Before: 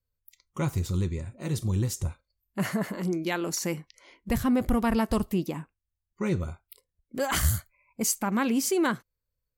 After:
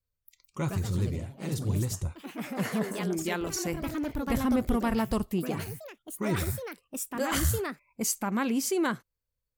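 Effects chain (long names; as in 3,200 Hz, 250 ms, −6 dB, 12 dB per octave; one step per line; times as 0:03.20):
delay with pitch and tempo change per echo 208 ms, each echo +3 semitones, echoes 3, each echo −6 dB
level −2.5 dB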